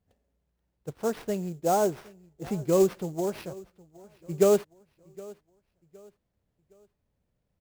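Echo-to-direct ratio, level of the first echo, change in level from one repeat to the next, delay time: -21.5 dB, -22.0 dB, -8.5 dB, 765 ms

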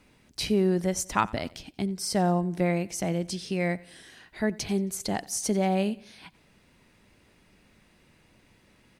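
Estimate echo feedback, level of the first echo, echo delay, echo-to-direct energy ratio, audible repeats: 45%, -22.0 dB, 90 ms, -21.0 dB, 2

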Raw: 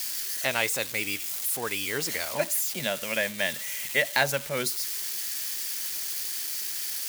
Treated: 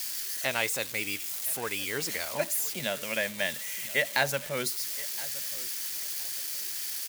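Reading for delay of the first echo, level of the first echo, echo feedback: 1018 ms, -19.0 dB, 27%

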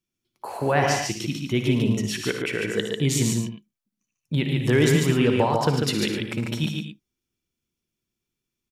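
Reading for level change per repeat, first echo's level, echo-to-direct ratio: no regular repeats, -11.0 dB, -1.0 dB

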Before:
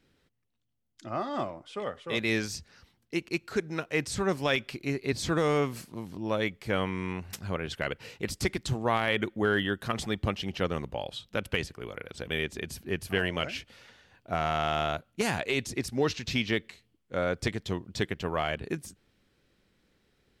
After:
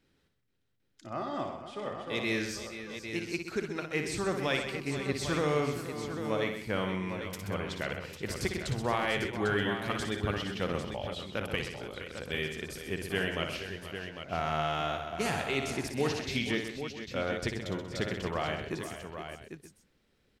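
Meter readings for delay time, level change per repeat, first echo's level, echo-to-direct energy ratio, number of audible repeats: 59 ms, no regular repeats, -7.0 dB, -2.5 dB, 7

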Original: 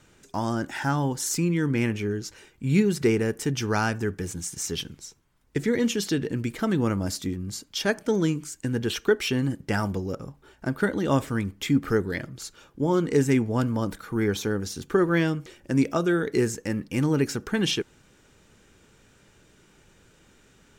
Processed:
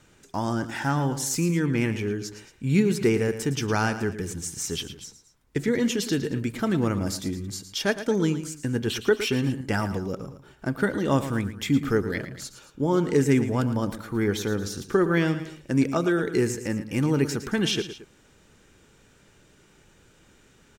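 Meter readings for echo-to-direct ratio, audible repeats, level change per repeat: -11.0 dB, 2, -6.0 dB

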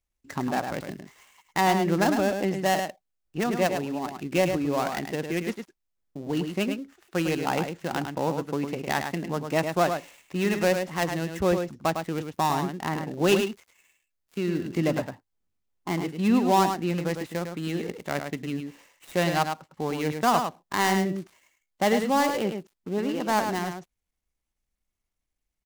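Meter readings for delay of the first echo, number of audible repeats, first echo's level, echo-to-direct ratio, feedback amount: 105 ms, 1, -6.5 dB, -6.5 dB, no regular repeats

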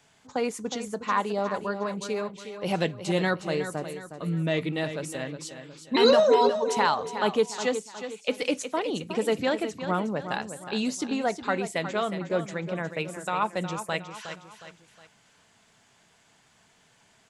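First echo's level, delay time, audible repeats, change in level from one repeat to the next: -10.0 dB, 363 ms, 3, -7.5 dB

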